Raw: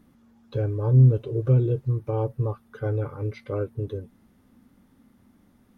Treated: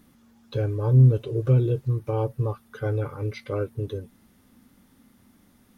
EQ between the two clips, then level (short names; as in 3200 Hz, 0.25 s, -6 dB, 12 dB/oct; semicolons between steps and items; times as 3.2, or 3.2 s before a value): high shelf 2100 Hz +9.5 dB; 0.0 dB